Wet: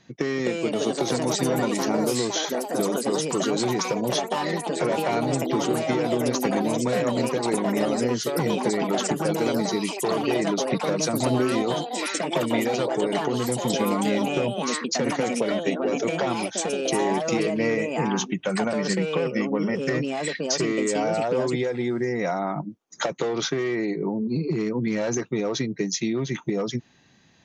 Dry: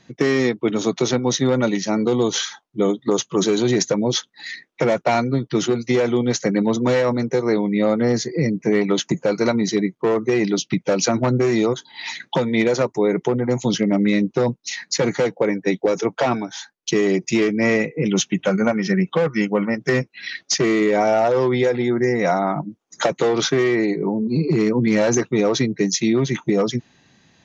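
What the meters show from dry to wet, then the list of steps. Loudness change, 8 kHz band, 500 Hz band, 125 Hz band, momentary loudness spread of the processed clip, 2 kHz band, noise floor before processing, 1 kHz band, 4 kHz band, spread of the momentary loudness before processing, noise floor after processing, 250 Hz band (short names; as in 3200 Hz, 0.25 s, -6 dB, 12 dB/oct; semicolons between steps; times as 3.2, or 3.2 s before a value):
-5.0 dB, n/a, -5.0 dB, -6.0 dB, 3 LU, -5.0 dB, -64 dBFS, -2.0 dB, -3.5 dB, 5 LU, -43 dBFS, -5.5 dB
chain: compressor, threshold -19 dBFS, peak gain reduction 6.5 dB; echoes that change speed 0.301 s, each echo +4 st, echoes 3; gain -3 dB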